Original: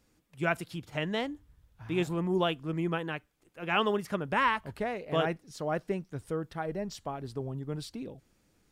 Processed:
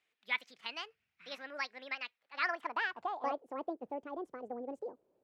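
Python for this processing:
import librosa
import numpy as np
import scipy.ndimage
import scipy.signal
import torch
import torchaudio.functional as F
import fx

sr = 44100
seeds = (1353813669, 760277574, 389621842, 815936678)

y = fx.speed_glide(x, sr, from_pct=145, to_pct=188)
y = fx.filter_sweep_bandpass(y, sr, from_hz=2300.0, to_hz=460.0, start_s=2.09, end_s=3.56, q=2.0)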